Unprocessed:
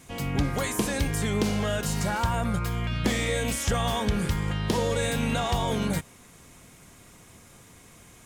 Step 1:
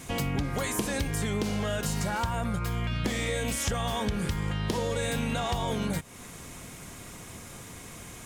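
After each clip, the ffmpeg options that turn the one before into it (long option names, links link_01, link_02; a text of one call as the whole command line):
ffmpeg -i in.wav -af "acompressor=threshold=-35dB:ratio=5,volume=7.5dB" out.wav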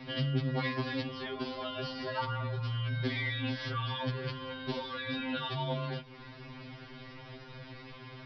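ffmpeg -i in.wav -filter_complex "[0:a]acrossover=split=180|1600[link_01][link_02][link_03];[link_03]aeval=exprs='(mod(15.8*val(0)+1,2)-1)/15.8':channel_layout=same[link_04];[link_01][link_02][link_04]amix=inputs=3:normalize=0,aresample=11025,aresample=44100,afftfilt=real='re*2.45*eq(mod(b,6),0)':imag='im*2.45*eq(mod(b,6),0)':win_size=2048:overlap=0.75" out.wav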